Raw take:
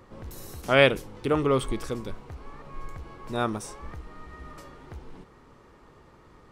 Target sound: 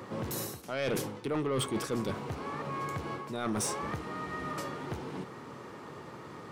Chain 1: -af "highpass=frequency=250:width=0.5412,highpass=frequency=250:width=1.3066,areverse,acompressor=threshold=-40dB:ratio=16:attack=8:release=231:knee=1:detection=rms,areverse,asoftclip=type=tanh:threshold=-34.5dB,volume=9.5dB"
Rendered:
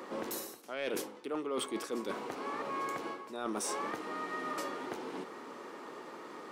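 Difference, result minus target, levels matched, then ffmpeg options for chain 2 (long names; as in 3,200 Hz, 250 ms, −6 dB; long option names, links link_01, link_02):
125 Hz band −15.5 dB; downward compressor: peak gain reduction +6 dB
-af "highpass=frequency=110:width=0.5412,highpass=frequency=110:width=1.3066,areverse,acompressor=threshold=-33dB:ratio=16:attack=8:release=231:knee=1:detection=rms,areverse,asoftclip=type=tanh:threshold=-34.5dB,volume=9.5dB"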